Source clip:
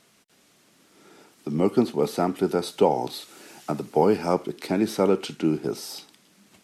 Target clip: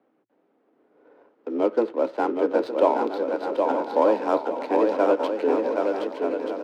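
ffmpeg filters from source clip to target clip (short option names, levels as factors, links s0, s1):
-filter_complex "[0:a]adynamicsmooth=sensitivity=6.5:basefreq=800,lowpass=f=3000:p=1,asplit=2[s0][s1];[s1]aecho=0:1:914:0.251[s2];[s0][s2]amix=inputs=2:normalize=0,afreqshift=110,bandreject=f=360:w=12,asplit=2[s3][s4];[s4]aecho=0:1:770|1232|1509|1676|1775:0.631|0.398|0.251|0.158|0.1[s5];[s3][s5]amix=inputs=2:normalize=0"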